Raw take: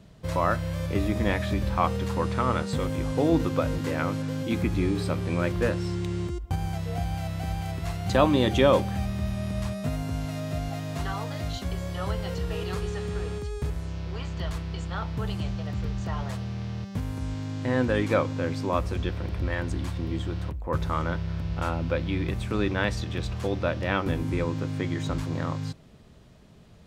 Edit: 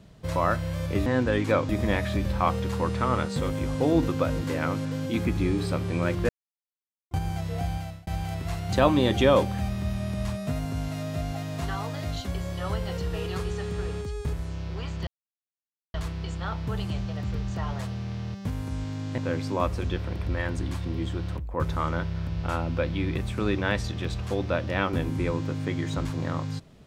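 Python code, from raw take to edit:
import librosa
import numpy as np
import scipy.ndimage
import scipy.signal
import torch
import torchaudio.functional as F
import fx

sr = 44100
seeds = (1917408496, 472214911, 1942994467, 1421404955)

y = fx.edit(x, sr, fx.silence(start_s=5.66, length_s=0.82),
    fx.fade_out_span(start_s=7.1, length_s=0.34),
    fx.insert_silence(at_s=14.44, length_s=0.87),
    fx.move(start_s=17.68, length_s=0.63, to_s=1.06), tone=tone)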